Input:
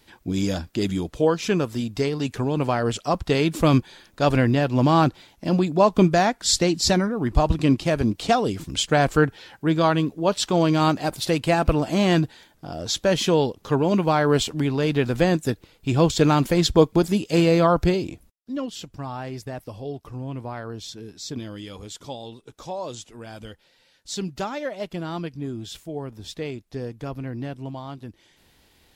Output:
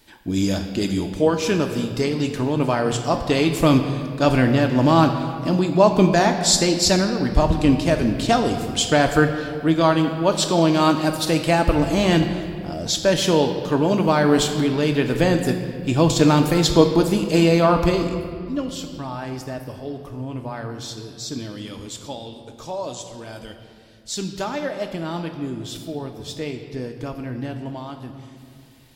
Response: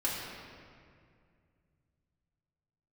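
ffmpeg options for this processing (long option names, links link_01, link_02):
-filter_complex "[0:a]asplit=2[link_01][link_02];[1:a]atrim=start_sample=2205,highshelf=frequency=4400:gain=9.5[link_03];[link_02][link_03]afir=irnorm=-1:irlink=0,volume=-9.5dB[link_04];[link_01][link_04]amix=inputs=2:normalize=0,volume=-1dB"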